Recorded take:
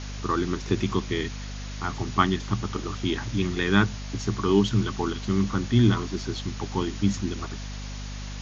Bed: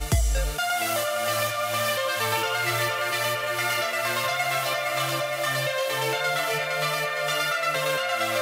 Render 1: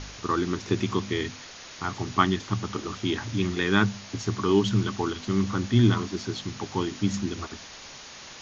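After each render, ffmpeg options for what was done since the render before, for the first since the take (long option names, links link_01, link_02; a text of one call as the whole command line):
ffmpeg -i in.wav -af "bandreject=frequency=50:width_type=h:width=4,bandreject=frequency=100:width_type=h:width=4,bandreject=frequency=150:width_type=h:width=4,bandreject=frequency=200:width_type=h:width=4,bandreject=frequency=250:width_type=h:width=4" out.wav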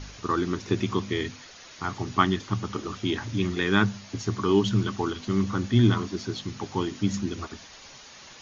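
ffmpeg -i in.wav -af "afftdn=noise_reduction=6:noise_floor=-44" out.wav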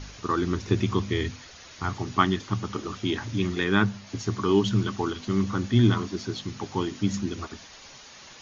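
ffmpeg -i in.wav -filter_complex "[0:a]asettb=1/sr,asplit=3[link_01][link_02][link_03];[link_01]atrim=end=0.434[link_04];[link_02]atrim=start=0.43:end=1.97,asetpts=PTS-STARTPTS,afade=type=in:duration=0.004:curve=qsin,afade=type=out:start_time=1.536:duration=0.004:curve=qsin,equalizer=frequency=65:width_type=o:width=1.4:gain=11[link_05];[link_03]atrim=start=1.966[link_06];[link_04][link_05]acrossfade=duration=0.004:curve1=hsin:curve2=qsin[link_07];[link_07][link_06]acrossfade=duration=0.004:curve1=qsin:curve2=hsin,asettb=1/sr,asplit=3[link_08][link_09][link_10];[link_08]atrim=end=3.644[link_11];[link_09]atrim=start=3.64:end=4.07,asetpts=PTS-STARTPTS,afade=type=in:duration=0.004:curve=qsin,afade=type=out:start_time=0.426:duration=0.004:curve=qsin,highshelf=frequency=4700:gain=-6.5[link_12];[link_10]atrim=start=4.066[link_13];[link_11][link_12]acrossfade=duration=0.004:curve1=hsin:curve2=qsin[link_14];[link_14][link_13]acrossfade=duration=0.004:curve1=qsin:curve2=hsin" out.wav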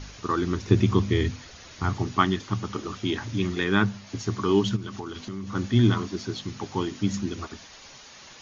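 ffmpeg -i in.wav -filter_complex "[0:a]asettb=1/sr,asplit=3[link_01][link_02][link_03];[link_01]atrim=end=0.704[link_04];[link_02]atrim=start=0.7:end=2.08,asetpts=PTS-STARTPTS,afade=type=in:duration=0.004:curve=qsin,afade=type=out:start_time=1.376:duration=0.004:curve=qsin,lowshelf=frequency=410:gain=5.5[link_05];[link_03]atrim=start=2.076[link_06];[link_04][link_05]acrossfade=duration=0.004:curve1=hsin:curve2=qsin[link_07];[link_07][link_06]acrossfade=duration=0.004:curve1=qsin:curve2=hsin,asplit=3[link_08][link_09][link_10];[link_08]afade=type=out:start_time=4.75:duration=0.02[link_11];[link_09]acompressor=threshold=-31dB:ratio=5:attack=3.2:release=140:knee=1:detection=peak,afade=type=in:start_time=4.75:duration=0.02,afade=type=out:start_time=5.54:duration=0.02[link_12];[link_10]afade=type=in:start_time=5.54:duration=0.02[link_13];[link_11][link_12][link_13]amix=inputs=3:normalize=0" out.wav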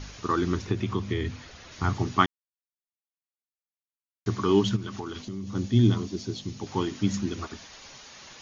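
ffmpeg -i in.wav -filter_complex "[0:a]asettb=1/sr,asplit=3[link_01][link_02][link_03];[link_01]atrim=end=0.654[link_04];[link_02]atrim=start=0.65:end=1.72,asetpts=PTS-STARTPTS,afade=type=in:duration=0.004:curve=qsin,afade=type=out:start_time=1.066:duration=0.004:curve=qsin,acrossover=split=420|4000[link_05][link_06][link_07];[link_05]acompressor=threshold=-27dB:ratio=4[link_08];[link_06]acompressor=threshold=-33dB:ratio=4[link_09];[link_07]acompressor=threshold=-56dB:ratio=4[link_10];[link_08][link_09][link_10]amix=inputs=3:normalize=0[link_11];[link_03]atrim=start=1.716[link_12];[link_04][link_11]acrossfade=duration=0.004:curve1=hsin:curve2=qsin[link_13];[link_13][link_12]acrossfade=duration=0.004:curve1=qsin:curve2=hsin,asettb=1/sr,asplit=3[link_14][link_15][link_16];[link_14]atrim=end=5.224[link_17];[link_15]atrim=start=5.22:end=6.67,asetpts=PTS-STARTPTS,afade=type=in:duration=0.004:curve=qsin,afade=type=out:start_time=1.446:duration=0.004:curve=qsin,equalizer=frequency=1400:width_type=o:width=1.8:gain=-11[link_18];[link_16]atrim=start=6.666[link_19];[link_17][link_18]acrossfade=duration=0.004:curve1=hsin:curve2=qsin[link_20];[link_20][link_19]acrossfade=duration=0.004:curve1=qsin:curve2=hsin,asplit=3[link_21][link_22][link_23];[link_21]atrim=end=2.26,asetpts=PTS-STARTPTS,afade=type=out:start_time=2.256:duration=0.004:curve=hsin[link_24];[link_22]atrim=start=2.26:end=4.26,asetpts=PTS-STARTPTS,volume=0[link_25];[link_23]atrim=start=4.26,asetpts=PTS-STARTPTS,afade=type=in:duration=0.004:curve=hsin[link_26];[link_24][link_25][link_26]concat=n=3:v=0:a=1" out.wav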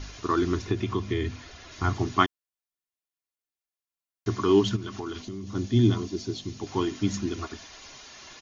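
ffmpeg -i in.wav -af "aecho=1:1:2.9:0.39" out.wav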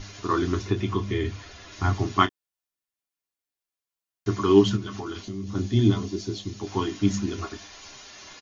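ffmpeg -i in.wav -af "aecho=1:1:10|30:0.531|0.299" out.wav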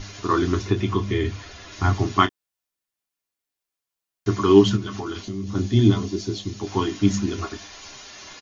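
ffmpeg -i in.wav -af "volume=3.5dB,alimiter=limit=-2dB:level=0:latency=1" out.wav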